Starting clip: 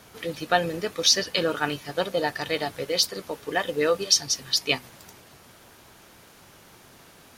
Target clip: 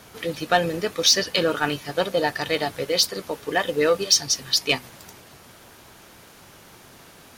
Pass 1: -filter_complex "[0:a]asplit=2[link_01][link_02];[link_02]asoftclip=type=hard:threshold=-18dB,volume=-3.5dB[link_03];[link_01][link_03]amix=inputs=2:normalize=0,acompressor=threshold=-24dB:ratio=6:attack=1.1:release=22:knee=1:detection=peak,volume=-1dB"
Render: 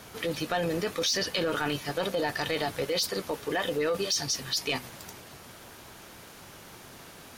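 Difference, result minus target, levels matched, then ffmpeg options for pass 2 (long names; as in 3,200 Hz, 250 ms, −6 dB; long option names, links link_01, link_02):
downward compressor: peak gain reduction +13.5 dB
-filter_complex "[0:a]asplit=2[link_01][link_02];[link_02]asoftclip=type=hard:threshold=-18dB,volume=-3.5dB[link_03];[link_01][link_03]amix=inputs=2:normalize=0,volume=-1dB"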